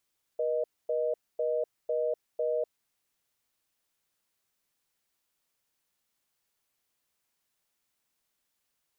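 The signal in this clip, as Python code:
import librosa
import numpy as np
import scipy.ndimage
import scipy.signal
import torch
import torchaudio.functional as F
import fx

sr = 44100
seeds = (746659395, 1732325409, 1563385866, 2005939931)

y = fx.call_progress(sr, length_s=2.41, kind='reorder tone', level_db=-29.0)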